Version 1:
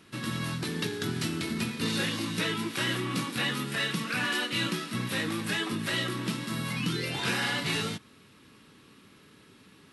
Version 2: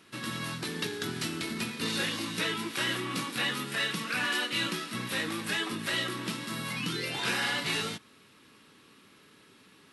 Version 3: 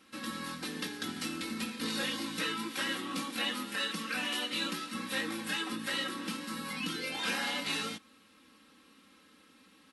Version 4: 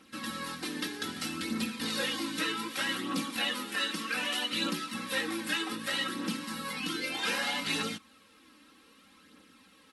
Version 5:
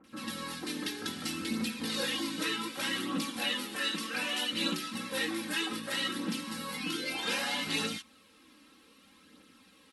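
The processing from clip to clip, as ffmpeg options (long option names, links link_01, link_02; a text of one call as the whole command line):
ffmpeg -i in.wav -af "lowshelf=frequency=210:gain=-9.5" out.wav
ffmpeg -i in.wav -af "aecho=1:1:3.8:1,volume=-6dB" out.wav
ffmpeg -i in.wav -af "aphaser=in_gain=1:out_gain=1:delay=3.4:decay=0.39:speed=0.64:type=triangular,volume=1.5dB" out.wav
ffmpeg -i in.wav -filter_complex "[0:a]acrossover=split=1400[link_01][link_02];[link_02]adelay=40[link_03];[link_01][link_03]amix=inputs=2:normalize=0" out.wav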